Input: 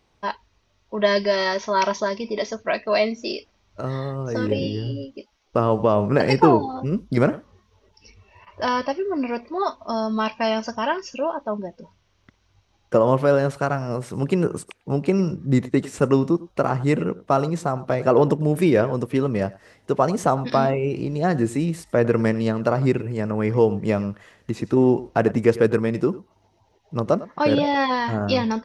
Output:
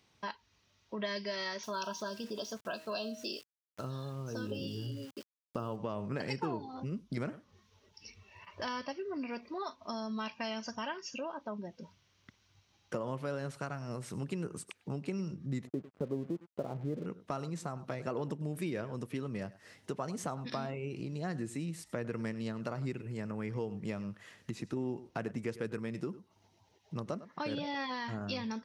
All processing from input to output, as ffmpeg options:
-filter_complex "[0:a]asettb=1/sr,asplit=3[a][b][c];[a]atrim=end=1.634[d];[b]atrim=start=1.63:end=5.76,asetpts=PTS-STARTPTS,afade=t=in:d=0.004:c=qsin,afade=t=out:st=4.126:d=0.004:c=qsin,asuperstop=centerf=2100:order=12:qfactor=2.3,bandreject=f=158.5:t=h:w=4,bandreject=f=317:t=h:w=4,bandreject=f=475.5:t=h:w=4,bandreject=f=634:t=h:w=4,bandreject=f=792.5:t=h:w=4,bandreject=f=951:t=h:w=4,bandreject=f=1.1095k:t=h:w=4,bandreject=f=1.268k:t=h:w=4,bandreject=f=1.4265k:t=h:w=4,bandreject=f=1.585k:t=h:w=4,bandreject=f=1.7435k:t=h:w=4,bandreject=f=1.902k:t=h:w=4,bandreject=f=2.0605k:t=h:w=4,bandreject=f=2.219k:t=h:w=4,bandreject=f=2.3775k:t=h:w=4,bandreject=f=2.536k:t=h:w=4,bandreject=f=2.6945k:t=h:w=4,bandreject=f=2.853k:t=h:w=4,bandreject=f=3.0115k:t=h:w=4,bandreject=f=3.17k:t=h:w=4,bandreject=f=3.3285k:t=h:w=4,bandreject=f=3.487k:t=h:w=4,bandreject=f=3.6455k:t=h:w=4,bandreject=f=3.804k:t=h:w=4,bandreject=f=3.9625k:t=h:w=4,bandreject=f=4.121k:t=h:w=4,bandreject=f=4.2795k:t=h:w=4,aeval=exprs='val(0)*gte(abs(val(0)),0.00708)':c=same[e];[c]atrim=start=5.756[f];[d][e]acrossfade=d=0.004:c1=hsin:c2=qsin[g];[g][f]acrossfade=d=0.004:c1=qsin:c2=hsin,asettb=1/sr,asplit=3[h][i][j];[h]atrim=end=15.674[k];[i]atrim=start=15.67:end=17.06,asetpts=PTS-STARTPTS,afade=t=in:d=0.004:c=qsin,afade=t=out:st=1.386:d=0.004:c=qsin,lowpass=f=590:t=q:w=1.8,aeval=exprs='sgn(val(0))*max(abs(val(0))-0.01,0)':c=same[l];[j]atrim=start=17.056[m];[k][l]acrossfade=d=0.004:c1=hsin:c2=qsin[n];[n][m]acrossfade=d=0.004:c1=qsin:c2=hsin,highpass=120,equalizer=f=580:t=o:w=2.7:g=-8.5,acompressor=threshold=-40dB:ratio=2.5"

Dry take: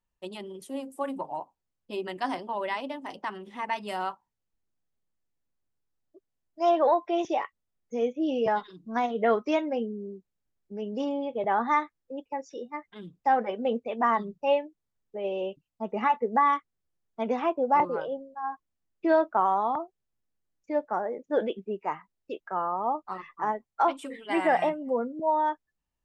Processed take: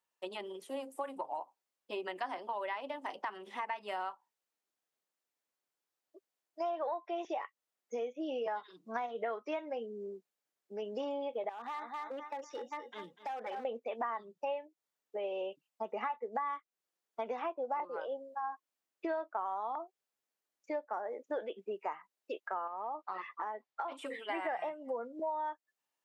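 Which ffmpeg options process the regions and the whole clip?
-filter_complex "[0:a]asettb=1/sr,asplit=3[a][b][c];[a]atrim=end=11.494[d];[b]atrim=start=11.49:end=13.65,asetpts=PTS-STARTPTS,afade=t=in:d=0.004:c=qsin,afade=t=out:st=2.156:d=0.004:c=qsin,aecho=1:1:244|488|732:0.2|0.0459|0.0106,atrim=end_sample=95256,acompressor=threshold=-35dB:ratio=8:attack=3.2:release=140:knee=1:detection=peak,asoftclip=type=hard:threshold=-35dB[e];[c]atrim=start=13.646[f];[d][e]acrossfade=d=0.004:c1=hsin:c2=qsin[g];[g][f]acrossfade=d=0.004:c1=qsin:c2=hsin,asettb=1/sr,asplit=3[h][i][j];[h]atrim=end=22.674[k];[i]atrim=start=22.67:end=23.92,asetpts=PTS-STARTPTS,afade=t=in:d=0.004:c=qsin,afade=t=out:st=1.246:d=0.004:c=qsin,lowpass=4.6k,acompressor=threshold=-34dB:ratio=3:attack=3.2:release=140:knee=1:detection=peak[l];[j]atrim=start=23.916[m];[k][l]acrossfade=d=0.004:c1=hsin:c2=qsin[n];[n][m]acrossfade=d=0.004:c1=qsin:c2=hsin,acrossover=split=3100[o][p];[p]acompressor=threshold=-57dB:ratio=4:attack=1:release=60[q];[o][q]amix=inputs=2:normalize=0,highpass=480,acompressor=threshold=-38dB:ratio=5,volume=2.5dB"

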